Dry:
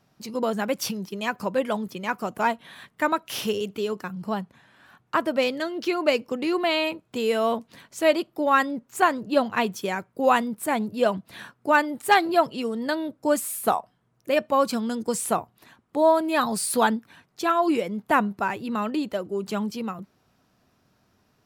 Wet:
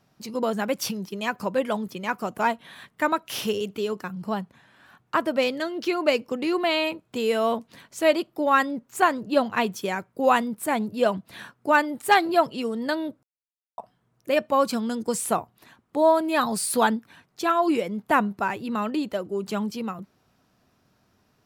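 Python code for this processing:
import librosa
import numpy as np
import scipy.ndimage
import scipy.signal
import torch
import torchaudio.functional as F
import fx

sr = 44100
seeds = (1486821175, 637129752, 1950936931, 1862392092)

y = fx.edit(x, sr, fx.silence(start_s=13.23, length_s=0.55), tone=tone)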